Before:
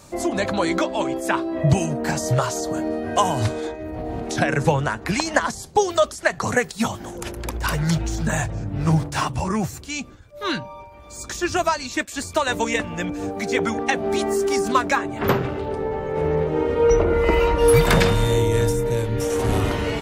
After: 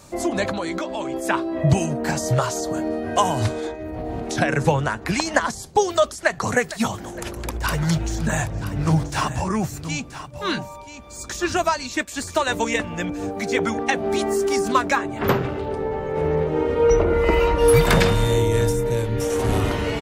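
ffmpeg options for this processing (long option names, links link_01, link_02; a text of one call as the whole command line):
ffmpeg -i in.wav -filter_complex "[0:a]asettb=1/sr,asplit=3[link_01][link_02][link_03];[link_01]atrim=end=0.514[link_04];[link_02]atrim=start=0.51:end=1.14,asetpts=PTS-STARTPTS,afade=type=in:duration=0.004:curve=qsin,afade=type=out:start_time=0.626:duration=0.004:curve=qsin,acompressor=threshold=-24dB:ratio=3:attack=3.2:release=140:knee=1:detection=peak[link_05];[link_03]atrim=start=1.136[link_06];[link_04][link_05]acrossfade=duration=0.004:curve1=hsin:curve2=qsin[link_07];[link_07][link_06]acrossfade=duration=0.004:curve1=qsin:curve2=hsin,asplit=2[link_08][link_09];[link_09]afade=type=in:start_time=6.14:duration=0.01,afade=type=out:start_time=6.54:duration=0.01,aecho=0:1:460|920|1380|1840|2300:0.16788|0.0923342|0.0507838|0.0279311|0.0153621[link_10];[link_08][link_10]amix=inputs=2:normalize=0,asplit=3[link_11][link_12][link_13];[link_11]afade=type=out:start_time=7.81:duration=0.02[link_14];[link_12]aecho=1:1:980:0.237,afade=type=in:start_time=7.81:duration=0.02,afade=type=out:start_time=12.41:duration=0.02[link_15];[link_13]afade=type=in:start_time=12.41:duration=0.02[link_16];[link_14][link_15][link_16]amix=inputs=3:normalize=0" out.wav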